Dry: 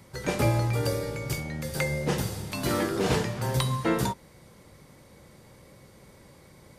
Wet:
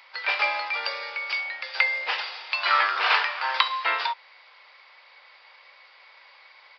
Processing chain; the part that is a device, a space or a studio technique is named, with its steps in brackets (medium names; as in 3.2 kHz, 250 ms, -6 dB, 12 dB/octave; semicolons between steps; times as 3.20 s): musical greeting card (resampled via 11.025 kHz; high-pass 850 Hz 24 dB/octave; peaking EQ 2.5 kHz +7 dB 0.6 oct); 2.59–3.68 s: dynamic bell 1.3 kHz, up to +7 dB, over -46 dBFS, Q 1.4; trim +6.5 dB